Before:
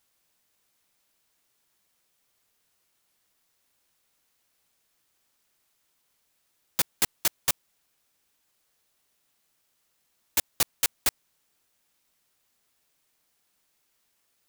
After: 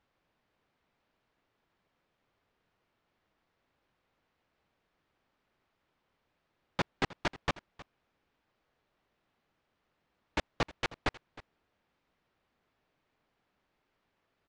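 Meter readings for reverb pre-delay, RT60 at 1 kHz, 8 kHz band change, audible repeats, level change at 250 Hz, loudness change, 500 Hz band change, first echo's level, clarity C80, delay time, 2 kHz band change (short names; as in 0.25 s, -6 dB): none, none, -23.5 dB, 1, +5.0 dB, -9.5 dB, +4.0 dB, -19.0 dB, none, 0.313 s, -1.5 dB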